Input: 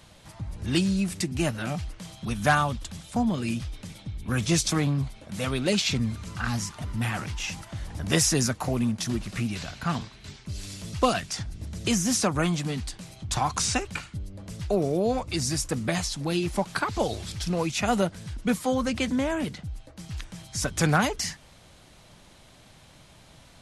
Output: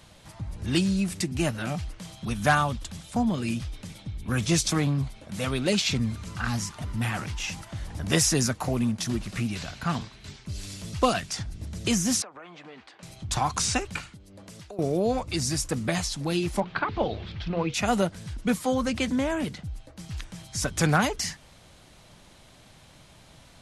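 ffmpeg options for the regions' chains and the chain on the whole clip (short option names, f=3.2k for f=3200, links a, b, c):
-filter_complex "[0:a]asettb=1/sr,asplit=3[a][b][c];[a]atrim=end=12.224[d];[b]atrim=start=12.22:end=13.03,asetpts=PTS-STARTPTS,afade=t=in:d=0.004:c=qsin,afade=t=out:st=0.806:d=0.004:c=qsin,acrossover=split=390 2700:gain=0.158 1 0.2[e][f][g];[e][f][g]amix=inputs=3:normalize=0,acompressor=threshold=-40dB:ratio=10:attack=3.2:release=140:knee=1:detection=peak,highpass=200,lowpass=4.6k[h];[c]atrim=start=13.026[i];[d][h]acrossfade=d=0.004:c1=hsin:c2=qsin[j];[j][i]acrossfade=d=0.004:c1=qsin:c2=hsin,asettb=1/sr,asplit=3[k][l][m];[k]atrim=end=14.134[n];[l]atrim=start=14.13:end=14.79,asetpts=PTS-STARTPTS,afade=t=in:d=0.004:c=qsin,afade=t=out:st=0.656:d=0.004:c=qsin,acompressor=threshold=-35dB:ratio=10:attack=3.2:release=140:knee=1:detection=peak,highpass=f=290:p=1[o];[m]atrim=start=14.786[p];[n][o]acrossfade=d=0.004:c1=hsin:c2=qsin[q];[q][p]acrossfade=d=0.004:c1=qsin:c2=hsin,asettb=1/sr,asplit=3[r][s][t];[r]atrim=end=16.604[u];[s]atrim=start=16.6:end=17.74,asetpts=PTS-STARTPTS,afade=t=in:d=0.004:c=qsin,afade=t=out:st=1.136:d=0.004:c=qsin,lowpass=f=3.5k:w=0.5412,lowpass=f=3.5k:w=1.3066,bandreject=f=60:t=h:w=6,bandreject=f=120:t=h:w=6,bandreject=f=180:t=h:w=6,bandreject=f=240:t=h:w=6,bandreject=f=300:t=h:w=6,bandreject=f=360:t=h:w=6,bandreject=f=420:t=h:w=6,bandreject=f=480:t=h:w=6[v];[t]atrim=start=17.736[w];[u][v]acrossfade=d=0.004:c1=hsin:c2=qsin[x];[x][w]acrossfade=d=0.004:c1=qsin:c2=hsin"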